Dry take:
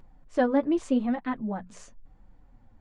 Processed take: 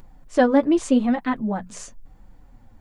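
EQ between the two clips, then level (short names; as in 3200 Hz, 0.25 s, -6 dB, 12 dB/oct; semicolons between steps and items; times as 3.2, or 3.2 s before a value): high shelf 5200 Hz +10 dB; +6.5 dB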